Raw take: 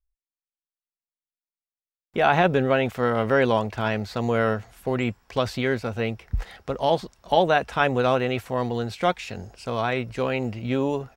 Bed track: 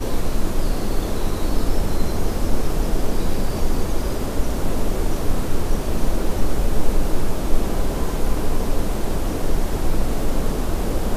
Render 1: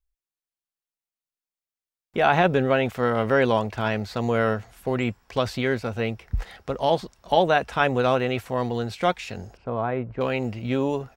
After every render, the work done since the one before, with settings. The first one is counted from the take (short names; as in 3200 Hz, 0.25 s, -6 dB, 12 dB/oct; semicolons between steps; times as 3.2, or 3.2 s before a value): 9.57–10.21 LPF 1200 Hz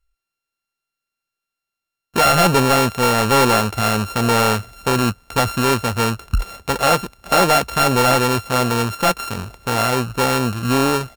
sample sorter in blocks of 32 samples; in parallel at -11 dB: sine folder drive 12 dB, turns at -4 dBFS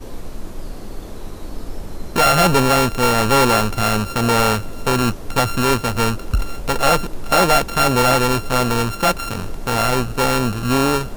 add bed track -9.5 dB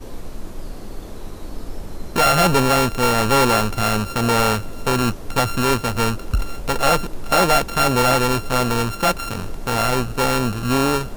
gain -1.5 dB